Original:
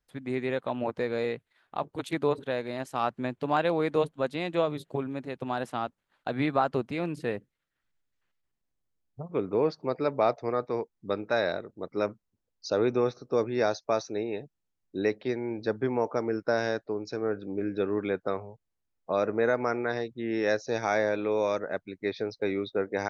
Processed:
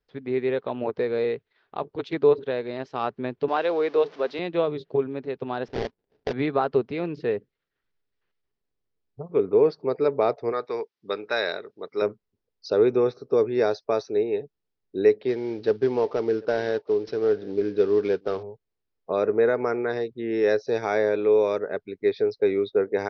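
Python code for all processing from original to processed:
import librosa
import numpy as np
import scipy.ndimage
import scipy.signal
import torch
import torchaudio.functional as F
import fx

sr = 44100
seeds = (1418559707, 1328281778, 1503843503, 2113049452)

y = fx.chain(x, sr, fx.zero_step(step_db=-40.5),
    fx.highpass(hz=370.0, slope=12), at=(3.48, 4.39))
y = fx.chain(y, sr, fx.high_shelf(hz=4900.0, db=-9.0),
    fx.sample_hold(seeds[0], rate_hz=1200.0, jitter_pct=20), at=(5.68, 6.33))
y = fx.chain(y, sr, fx.highpass(hz=120.0, slope=12),
    fx.tilt_shelf(db=-8.0, hz=890.0), at=(10.52, 12.02))
y = fx.chain(y, sr, fx.cvsd(bps=32000),
    fx.echo_single(ms=742, db=-23.5), at=(15.28, 18.43))
y = scipy.signal.sosfilt(scipy.signal.butter(8, 5500.0, 'lowpass', fs=sr, output='sos'), y)
y = fx.peak_eq(y, sr, hz=420.0, db=11.0, octaves=0.36)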